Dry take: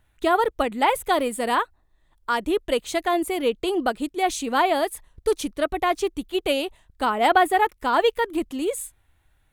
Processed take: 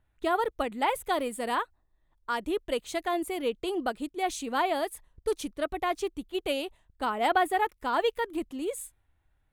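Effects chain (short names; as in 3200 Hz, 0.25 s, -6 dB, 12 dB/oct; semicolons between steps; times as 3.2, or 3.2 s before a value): mismatched tape noise reduction decoder only; gain -7 dB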